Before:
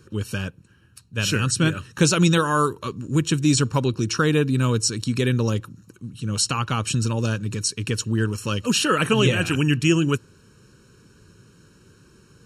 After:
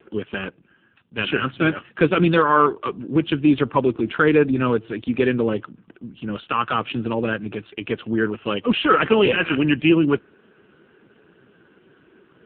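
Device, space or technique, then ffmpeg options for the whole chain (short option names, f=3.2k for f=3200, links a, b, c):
telephone: -af "highpass=280,lowpass=3.4k,asoftclip=type=tanh:threshold=-11dB,volume=7.5dB" -ar 8000 -c:a libopencore_amrnb -b:a 5150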